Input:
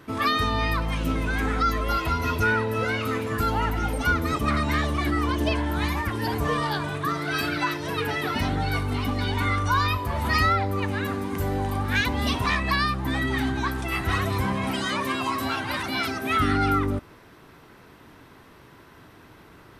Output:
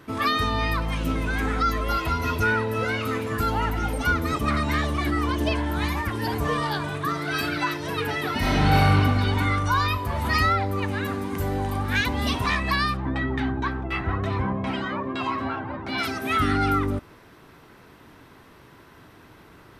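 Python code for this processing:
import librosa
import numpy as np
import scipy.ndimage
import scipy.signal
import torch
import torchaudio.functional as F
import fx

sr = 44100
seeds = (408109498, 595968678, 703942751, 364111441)

y = fx.reverb_throw(x, sr, start_s=8.38, length_s=0.46, rt60_s=2.5, drr_db=-7.0)
y = fx.filter_lfo_lowpass(y, sr, shape='saw_down', hz=fx.line((12.96, 5.4), (15.97, 1.1)), low_hz=620.0, high_hz=5000.0, q=0.73, at=(12.96, 15.97), fade=0.02)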